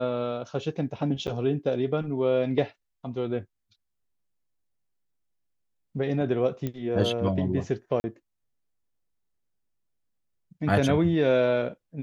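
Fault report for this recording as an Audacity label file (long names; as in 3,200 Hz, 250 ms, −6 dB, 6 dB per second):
1.270000	1.280000	drop-out 8.2 ms
6.670000	6.670000	click −18 dBFS
8.000000	8.040000	drop-out 40 ms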